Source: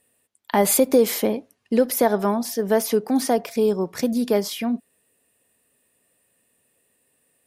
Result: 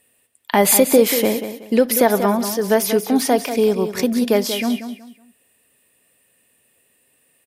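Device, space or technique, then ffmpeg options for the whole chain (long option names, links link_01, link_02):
presence and air boost: -af "equalizer=frequency=2600:width_type=o:width=1.2:gain=5.5,highshelf=frequency=12000:gain=5.5,aecho=1:1:186|372|558:0.316|0.0885|0.0248,volume=3dB"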